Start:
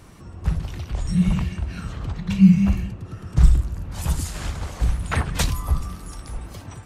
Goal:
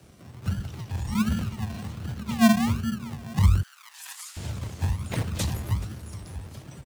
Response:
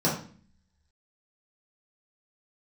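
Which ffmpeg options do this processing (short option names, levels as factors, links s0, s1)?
-filter_complex "[0:a]asplit=2[s0][s1];[s1]adelay=427,lowpass=f=1900:p=1,volume=0.224,asplit=2[s2][s3];[s3]adelay=427,lowpass=f=1900:p=1,volume=0.3,asplit=2[s4][s5];[s5]adelay=427,lowpass=f=1900:p=1,volume=0.3[s6];[s0][s2][s4][s6]amix=inputs=4:normalize=0,acrossover=split=2100[s7][s8];[s7]acrusher=samples=41:mix=1:aa=0.000001:lfo=1:lforange=24.6:lforate=1.3[s9];[s9][s8]amix=inputs=2:normalize=0,afreqshift=35,asettb=1/sr,asplit=3[s10][s11][s12];[s10]atrim=end=3.634[s13];[s11]atrim=start=3.63:end=4.37,asetpts=PTS-STARTPTS,afade=t=in:d=0.004:c=qsin,afade=t=out:st=0.736:d=0.004:c=qsin,highpass=f=1200:w=0.5412,highpass=f=1200:w=1.3066[s14];[s12]atrim=start=4.366[s15];[s13][s14]acrossfade=d=0.004:c1=hsin:c2=qsin[s16];[s16][s15]acrossfade=d=0.004:c1=qsin:c2=hsin,volume=0.501"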